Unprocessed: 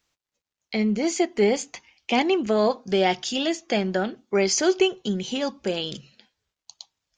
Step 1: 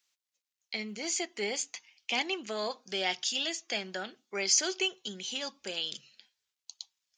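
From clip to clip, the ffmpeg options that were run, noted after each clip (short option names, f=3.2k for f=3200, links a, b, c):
-af "highpass=f=230:p=1,tiltshelf=f=1.4k:g=-8,volume=-8dB"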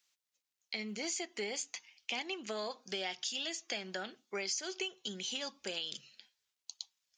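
-af "acompressor=threshold=-35dB:ratio=6"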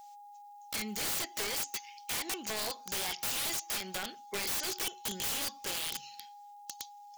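-af "crystalizer=i=3:c=0,aeval=exprs='(mod(33.5*val(0)+1,2)-1)/33.5':c=same,aeval=exprs='val(0)+0.00282*sin(2*PI*820*n/s)':c=same,volume=2dB"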